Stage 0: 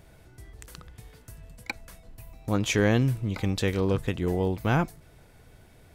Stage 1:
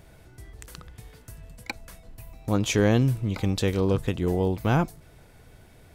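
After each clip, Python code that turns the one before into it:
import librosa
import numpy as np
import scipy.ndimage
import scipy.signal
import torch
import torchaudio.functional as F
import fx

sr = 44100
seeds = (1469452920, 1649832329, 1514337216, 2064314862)

y = fx.dynamic_eq(x, sr, hz=1900.0, q=1.5, threshold_db=-44.0, ratio=4.0, max_db=-5)
y = F.gain(torch.from_numpy(y), 2.0).numpy()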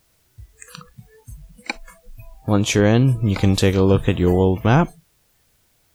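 y = fx.dmg_noise_colour(x, sr, seeds[0], colour='white', level_db=-48.0)
y = fx.rider(y, sr, range_db=3, speed_s=0.5)
y = fx.noise_reduce_blind(y, sr, reduce_db=23)
y = F.gain(torch.from_numpy(y), 8.0).numpy()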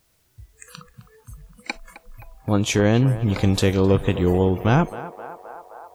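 y = fx.echo_banded(x, sr, ms=261, feedback_pct=83, hz=860.0, wet_db=-11.5)
y = F.gain(torch.from_numpy(y), -2.5).numpy()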